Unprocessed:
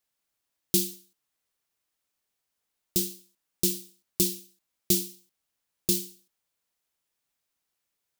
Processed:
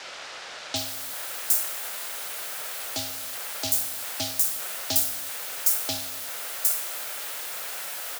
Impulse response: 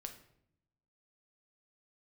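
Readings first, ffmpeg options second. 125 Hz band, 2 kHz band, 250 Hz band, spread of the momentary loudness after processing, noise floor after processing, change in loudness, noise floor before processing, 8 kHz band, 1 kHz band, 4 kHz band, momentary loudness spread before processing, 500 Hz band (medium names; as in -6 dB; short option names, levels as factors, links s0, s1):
-6.0 dB, +17.5 dB, -9.0 dB, 9 LU, -40 dBFS, +1.0 dB, -83 dBFS, +4.5 dB, no reading, +5.0 dB, 12 LU, -1.5 dB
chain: -filter_complex "[0:a]aeval=exprs='val(0)+0.5*0.0299*sgn(val(0))':c=same,lowshelf=f=670:t=q:w=3:g=-9,aeval=exprs='val(0)*sin(2*PI*380*n/s)':c=same,afreqshift=74,acrossover=split=5900[s0][s1];[s1]adelay=760[s2];[s0][s2]amix=inputs=2:normalize=0,volume=2"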